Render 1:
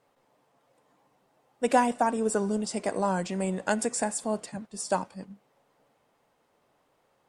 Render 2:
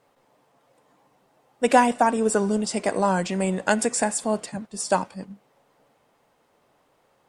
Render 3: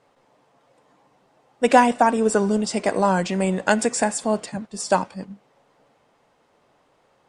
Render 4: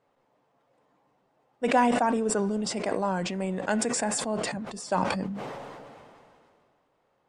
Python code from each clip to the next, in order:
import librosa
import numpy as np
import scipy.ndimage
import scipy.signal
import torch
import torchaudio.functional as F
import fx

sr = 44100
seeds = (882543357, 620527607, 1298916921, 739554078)

y1 = fx.dynamic_eq(x, sr, hz=2500.0, q=0.76, threshold_db=-43.0, ratio=4.0, max_db=3)
y1 = y1 * librosa.db_to_amplitude(5.0)
y2 = scipy.signal.sosfilt(scipy.signal.butter(2, 8000.0, 'lowpass', fs=sr, output='sos'), y1)
y2 = y2 * librosa.db_to_amplitude(2.5)
y3 = fx.high_shelf(y2, sr, hz=3500.0, db=-7.5)
y3 = fx.sustainer(y3, sr, db_per_s=25.0)
y3 = y3 * librosa.db_to_amplitude(-9.0)